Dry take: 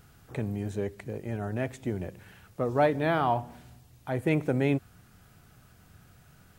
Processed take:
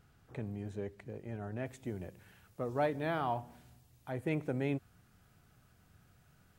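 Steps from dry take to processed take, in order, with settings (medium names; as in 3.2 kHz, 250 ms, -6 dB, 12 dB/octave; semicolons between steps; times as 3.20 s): treble shelf 6.4 kHz -8.5 dB, from 1.66 s +3 dB, from 4.12 s -2 dB; trim -8.5 dB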